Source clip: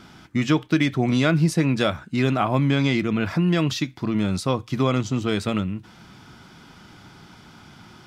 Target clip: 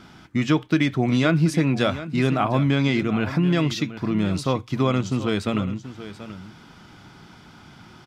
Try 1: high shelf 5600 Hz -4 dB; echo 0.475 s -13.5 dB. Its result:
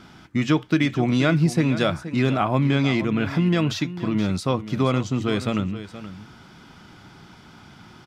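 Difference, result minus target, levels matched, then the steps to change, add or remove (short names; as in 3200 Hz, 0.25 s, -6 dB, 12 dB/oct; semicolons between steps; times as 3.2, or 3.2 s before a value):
echo 0.258 s early
change: echo 0.733 s -13.5 dB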